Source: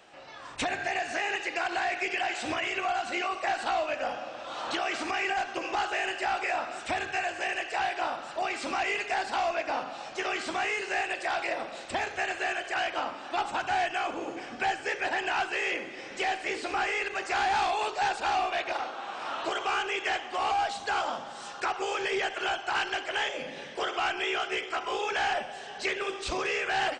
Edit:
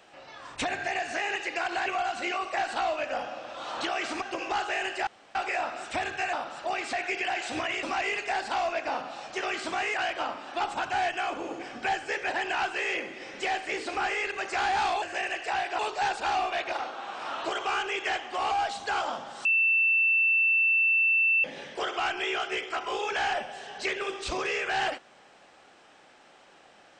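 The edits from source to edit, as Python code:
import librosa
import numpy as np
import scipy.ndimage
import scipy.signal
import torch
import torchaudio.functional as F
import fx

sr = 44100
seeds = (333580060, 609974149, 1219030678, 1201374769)

y = fx.edit(x, sr, fx.move(start_s=1.86, length_s=0.9, to_s=8.65),
    fx.cut(start_s=5.12, length_s=0.33),
    fx.insert_room_tone(at_s=6.3, length_s=0.28),
    fx.move(start_s=7.28, length_s=0.77, to_s=17.79),
    fx.cut(start_s=10.76, length_s=1.95),
    fx.bleep(start_s=21.45, length_s=1.99, hz=2670.0, db=-20.0), tone=tone)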